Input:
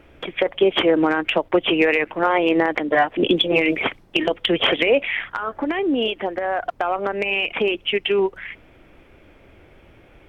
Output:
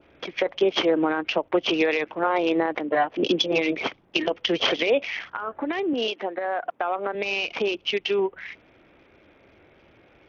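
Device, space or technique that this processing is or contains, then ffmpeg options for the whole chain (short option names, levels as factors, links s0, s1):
Bluetooth headset: -filter_complex "[0:a]asettb=1/sr,asplit=3[s0][s1][s2];[s0]atrim=end=5.934[s3];[s1]atrim=start=5.93:end=7.15,asetpts=PTS-STARTPTS,afade=t=in:d=0.004:c=qsin,afade=t=out:st=1.216:d=0.004:c=qsin,highpass=200[s4];[s2]atrim=start=7.146[s5];[s3][s4]acrossfade=d=0.004:c1=hsin:c2=qsin[s6];[s6][s5]acrossfade=d=0.004:c1=qsin:c2=hsin,adynamicequalizer=threshold=0.0158:dfrequency=1900:dqfactor=2:tfrequency=1900:tqfactor=2:attack=5:release=100:ratio=0.375:range=3:mode=cutabove:tftype=bell,highpass=f=170:p=1,aresample=8000,aresample=44100,volume=0.668" -ar 48000 -c:a sbc -b:a 64k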